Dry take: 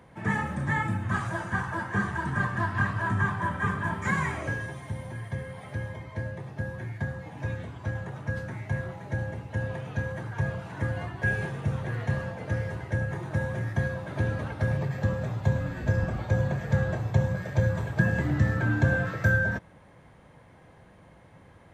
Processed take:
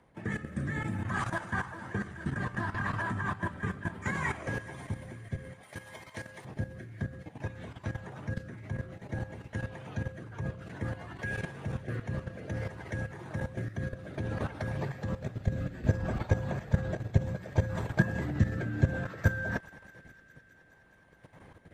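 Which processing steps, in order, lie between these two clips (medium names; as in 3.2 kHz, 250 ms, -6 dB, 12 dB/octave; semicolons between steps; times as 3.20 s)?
rotary cabinet horn 0.6 Hz; level held to a coarse grid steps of 11 dB; 5.63–6.45 s: tilt EQ +3.5 dB/octave; on a send: feedback echo behind a high-pass 209 ms, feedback 81%, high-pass 1.7 kHz, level -17 dB; on the sum: harmonic-percussive split harmonic -8 dB; trim +6 dB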